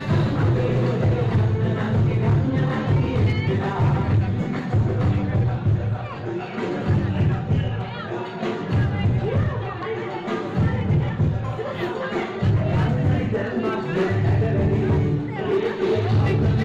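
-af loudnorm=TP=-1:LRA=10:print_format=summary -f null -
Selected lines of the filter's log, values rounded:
Input Integrated:    -22.2 LUFS
Input True Peak:     -13.3 dBTP
Input LRA:             2.9 LU
Input Threshold:     -32.2 LUFS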